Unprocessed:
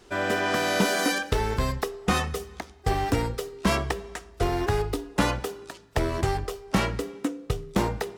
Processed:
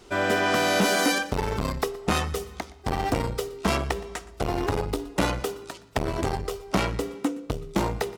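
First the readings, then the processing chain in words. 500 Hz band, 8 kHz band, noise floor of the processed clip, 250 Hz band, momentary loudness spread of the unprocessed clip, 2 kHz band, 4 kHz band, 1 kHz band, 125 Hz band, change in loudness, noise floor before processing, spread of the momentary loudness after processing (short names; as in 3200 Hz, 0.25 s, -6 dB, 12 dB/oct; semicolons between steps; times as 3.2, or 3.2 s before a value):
+1.0 dB, +1.5 dB, -47 dBFS, +0.5 dB, 9 LU, +1.0 dB, +1.5 dB, +0.5 dB, -1.5 dB, +0.5 dB, -50 dBFS, 11 LU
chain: notch 1700 Hz, Q 11; echo 0.119 s -21.5 dB; core saturation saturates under 590 Hz; gain +3 dB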